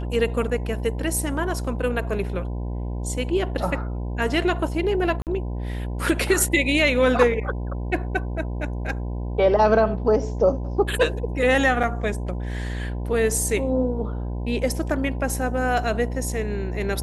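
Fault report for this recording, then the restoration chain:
buzz 60 Hz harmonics 17 -28 dBFS
5.22–5.27 s: dropout 48 ms
11.83–11.84 s: dropout 5.5 ms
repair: de-hum 60 Hz, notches 17; interpolate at 5.22 s, 48 ms; interpolate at 11.83 s, 5.5 ms

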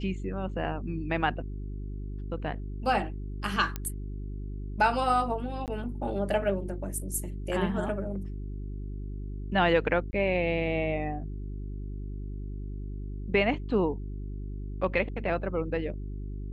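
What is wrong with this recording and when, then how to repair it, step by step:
hum 50 Hz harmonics 8 -36 dBFS
3.76 s: pop -17 dBFS
5.66–5.68 s: dropout 18 ms
10.11–10.13 s: dropout 20 ms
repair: de-click; de-hum 50 Hz, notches 8; interpolate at 5.66 s, 18 ms; interpolate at 10.11 s, 20 ms

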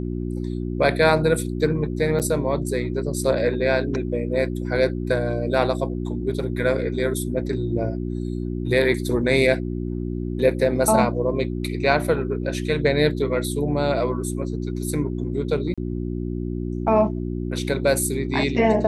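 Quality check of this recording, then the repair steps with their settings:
hum 60 Hz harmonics 6 -27 dBFS
2.19–2.20 s: dropout 7.9 ms
15.74–15.78 s: dropout 36 ms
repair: de-hum 60 Hz, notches 6; interpolate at 2.19 s, 7.9 ms; interpolate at 15.74 s, 36 ms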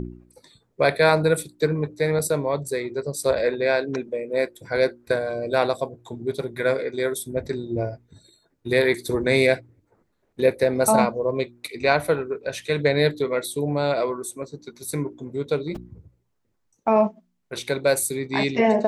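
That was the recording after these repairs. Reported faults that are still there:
nothing left

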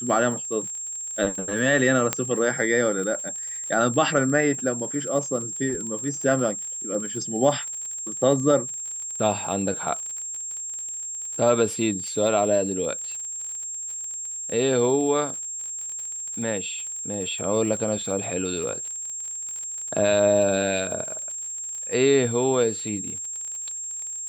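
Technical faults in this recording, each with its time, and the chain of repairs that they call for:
crackle 43 per s -32 dBFS
whine 7.5 kHz -30 dBFS
2.13 s: pop -6 dBFS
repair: de-click; band-stop 7.5 kHz, Q 30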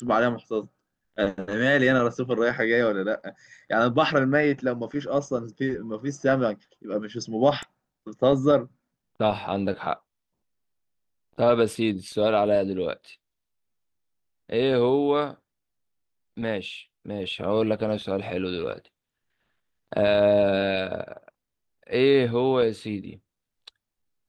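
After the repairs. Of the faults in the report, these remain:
nothing left

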